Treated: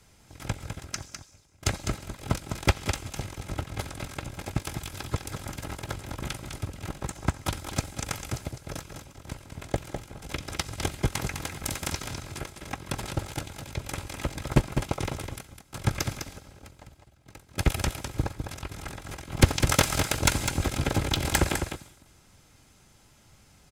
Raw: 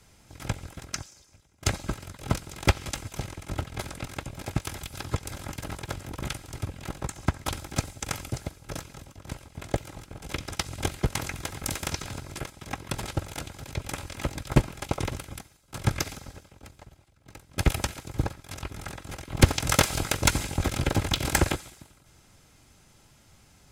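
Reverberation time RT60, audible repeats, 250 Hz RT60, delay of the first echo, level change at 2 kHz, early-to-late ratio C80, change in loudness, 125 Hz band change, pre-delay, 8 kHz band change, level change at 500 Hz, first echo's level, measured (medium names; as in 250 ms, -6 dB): no reverb, 1, no reverb, 204 ms, 0.0 dB, no reverb, -0.5 dB, 0.0 dB, no reverb, 0.0 dB, 0.0 dB, -7.0 dB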